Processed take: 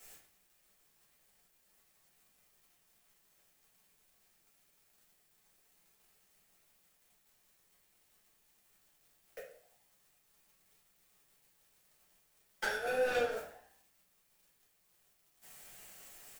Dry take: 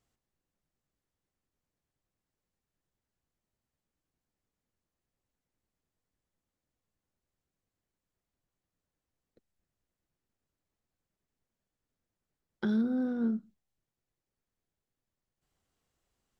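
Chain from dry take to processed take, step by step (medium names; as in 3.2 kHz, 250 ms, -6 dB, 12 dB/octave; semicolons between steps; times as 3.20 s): compressor with a negative ratio -34 dBFS, ratio -0.5; elliptic high-pass 480 Hz; tilt EQ +3.5 dB/octave; saturation -35 dBFS, distortion -14 dB; static phaser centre 1.1 kHz, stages 6; waveshaping leveller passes 5; frequency-shifting echo 85 ms, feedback 61%, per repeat +63 Hz, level -20.5 dB; simulated room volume 51 m³, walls mixed, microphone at 1.5 m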